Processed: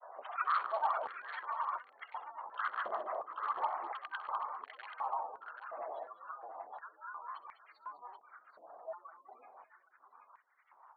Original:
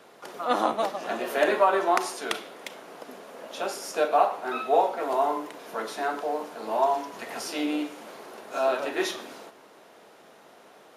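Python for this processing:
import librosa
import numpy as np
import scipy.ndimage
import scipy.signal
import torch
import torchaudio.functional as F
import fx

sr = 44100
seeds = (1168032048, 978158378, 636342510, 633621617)

y = fx.bin_compress(x, sr, power=0.6)
y = fx.doppler_pass(y, sr, speed_mps=29, closest_m=3.1, pass_at_s=2.27)
y = fx.spec_gate(y, sr, threshold_db=-10, keep='strong')
y = fx.high_shelf(y, sr, hz=3000.0, db=11.0)
y = fx.over_compress(y, sr, threshold_db=-43.0, ratio=-0.5)
y = fx.granulator(y, sr, seeds[0], grain_ms=100.0, per_s=20.0, spray_ms=100.0, spread_st=12)
y = 10.0 ** (-36.5 / 20.0) * (np.abs((y / 10.0 ** (-36.5 / 20.0) + 3.0) % 4.0 - 2.0) - 1.0)
y = scipy.signal.sosfilt(scipy.signal.cheby1(6, 9, 4400.0, 'lowpass', fs=sr, output='sos'), y)
y = fx.echo_multitap(y, sr, ms=(65, 202, 783), db=(-18.0, -11.5, -8.5))
y = fx.filter_held_highpass(y, sr, hz=2.8, low_hz=650.0, high_hz=2000.0)
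y = y * librosa.db_to_amplitude(7.5)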